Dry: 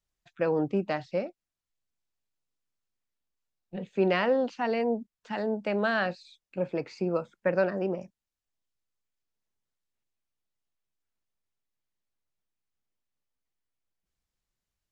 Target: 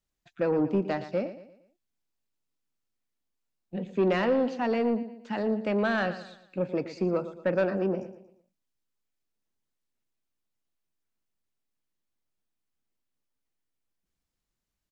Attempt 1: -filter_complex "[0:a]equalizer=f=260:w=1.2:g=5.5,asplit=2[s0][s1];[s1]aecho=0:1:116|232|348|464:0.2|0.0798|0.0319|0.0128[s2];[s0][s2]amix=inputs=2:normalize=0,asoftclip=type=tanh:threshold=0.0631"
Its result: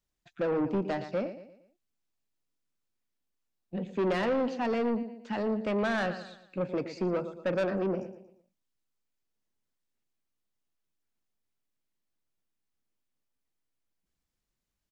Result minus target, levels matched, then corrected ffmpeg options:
saturation: distortion +8 dB
-filter_complex "[0:a]equalizer=f=260:w=1.2:g=5.5,asplit=2[s0][s1];[s1]aecho=0:1:116|232|348|464:0.2|0.0798|0.0319|0.0128[s2];[s0][s2]amix=inputs=2:normalize=0,asoftclip=type=tanh:threshold=0.141"

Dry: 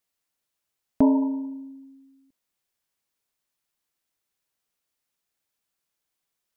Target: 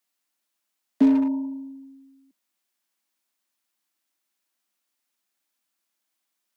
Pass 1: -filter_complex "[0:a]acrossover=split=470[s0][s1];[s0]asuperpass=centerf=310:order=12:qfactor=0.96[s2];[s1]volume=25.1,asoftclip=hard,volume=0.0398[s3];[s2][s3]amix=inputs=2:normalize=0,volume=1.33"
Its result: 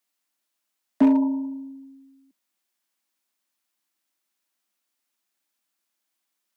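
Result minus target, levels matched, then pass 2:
overload inside the chain: distortion -6 dB
-filter_complex "[0:a]acrossover=split=470[s0][s1];[s0]asuperpass=centerf=310:order=12:qfactor=0.96[s2];[s1]volume=66.8,asoftclip=hard,volume=0.015[s3];[s2][s3]amix=inputs=2:normalize=0,volume=1.33"

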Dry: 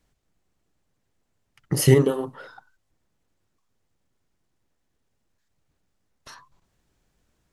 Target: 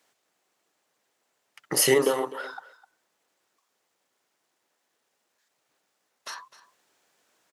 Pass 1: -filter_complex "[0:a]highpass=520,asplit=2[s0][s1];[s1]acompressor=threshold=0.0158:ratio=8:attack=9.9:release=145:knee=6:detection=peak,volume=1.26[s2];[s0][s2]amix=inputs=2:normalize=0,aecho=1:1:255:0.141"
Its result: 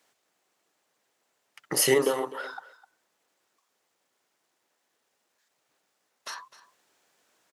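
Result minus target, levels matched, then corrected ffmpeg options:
compression: peak gain reduction +6 dB
-filter_complex "[0:a]highpass=520,asplit=2[s0][s1];[s1]acompressor=threshold=0.0355:ratio=8:attack=9.9:release=145:knee=6:detection=peak,volume=1.26[s2];[s0][s2]amix=inputs=2:normalize=0,aecho=1:1:255:0.141"

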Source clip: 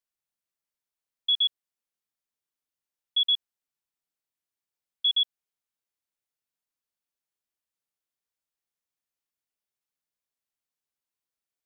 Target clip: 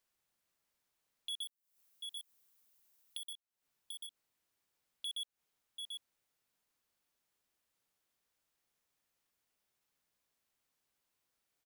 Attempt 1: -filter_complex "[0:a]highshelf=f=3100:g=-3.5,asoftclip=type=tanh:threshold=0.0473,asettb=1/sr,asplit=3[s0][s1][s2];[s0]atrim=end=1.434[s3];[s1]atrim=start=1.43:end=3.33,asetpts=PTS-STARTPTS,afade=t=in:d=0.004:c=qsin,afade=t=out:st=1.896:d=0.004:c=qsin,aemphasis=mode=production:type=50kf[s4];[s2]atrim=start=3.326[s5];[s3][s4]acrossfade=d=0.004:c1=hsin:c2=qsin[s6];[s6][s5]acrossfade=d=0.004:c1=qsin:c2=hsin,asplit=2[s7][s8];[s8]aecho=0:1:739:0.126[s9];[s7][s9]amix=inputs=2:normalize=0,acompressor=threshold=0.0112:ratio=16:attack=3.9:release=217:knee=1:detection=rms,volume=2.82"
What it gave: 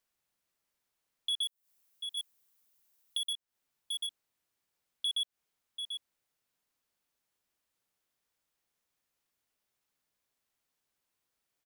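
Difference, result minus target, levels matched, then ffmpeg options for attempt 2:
compression: peak gain reduction -7 dB; saturation: distortion -5 dB
-filter_complex "[0:a]highshelf=f=3100:g=-3.5,asoftclip=type=tanh:threshold=0.0211,asettb=1/sr,asplit=3[s0][s1][s2];[s0]atrim=end=1.434[s3];[s1]atrim=start=1.43:end=3.33,asetpts=PTS-STARTPTS,afade=t=in:d=0.004:c=qsin,afade=t=out:st=1.896:d=0.004:c=qsin,aemphasis=mode=production:type=50kf[s4];[s2]atrim=start=3.326[s5];[s3][s4]acrossfade=d=0.004:c1=hsin:c2=qsin[s6];[s6][s5]acrossfade=d=0.004:c1=qsin:c2=hsin,asplit=2[s7][s8];[s8]aecho=0:1:739:0.126[s9];[s7][s9]amix=inputs=2:normalize=0,acompressor=threshold=0.00376:ratio=16:attack=3.9:release=217:knee=1:detection=rms,volume=2.82"

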